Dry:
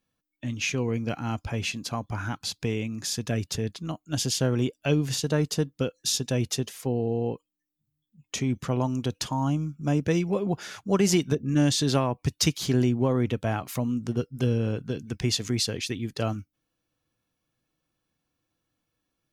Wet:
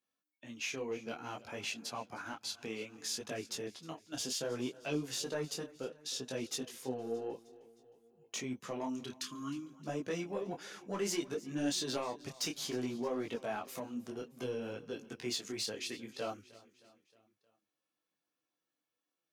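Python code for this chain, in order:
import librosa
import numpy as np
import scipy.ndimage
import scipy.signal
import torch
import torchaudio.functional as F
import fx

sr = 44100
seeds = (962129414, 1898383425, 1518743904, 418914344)

p1 = fx.lowpass(x, sr, hz=fx.line((5.79, 1500.0), (6.21, 3700.0)), slope=6, at=(5.79, 6.21), fade=0.02)
p2 = fx.spec_erase(p1, sr, start_s=9.04, length_s=0.69, low_hz=410.0, high_hz=1000.0)
p3 = scipy.signal.sosfilt(scipy.signal.butter(2, 310.0, 'highpass', fs=sr, output='sos'), p2)
p4 = fx.level_steps(p3, sr, step_db=18)
p5 = p3 + F.gain(torch.from_numpy(p4), -2.5).numpy()
p6 = 10.0 ** (-16.5 / 20.0) * np.tanh(p5 / 10.0 ** (-16.5 / 20.0))
p7 = p6 + fx.echo_feedback(p6, sr, ms=311, feedback_pct=55, wet_db=-20.0, dry=0)
p8 = fx.detune_double(p7, sr, cents=21)
y = F.gain(torch.from_numpy(p8), -6.5).numpy()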